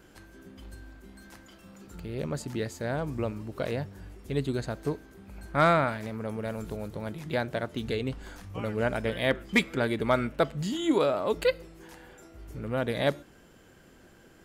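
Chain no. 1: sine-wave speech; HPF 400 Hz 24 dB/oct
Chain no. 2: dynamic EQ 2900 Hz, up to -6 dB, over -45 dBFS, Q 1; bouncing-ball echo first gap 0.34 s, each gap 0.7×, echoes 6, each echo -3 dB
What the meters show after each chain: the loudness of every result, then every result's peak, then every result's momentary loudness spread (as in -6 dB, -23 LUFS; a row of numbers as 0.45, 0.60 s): -30.5, -28.5 LUFS; -7.5, -11.0 dBFS; 17, 17 LU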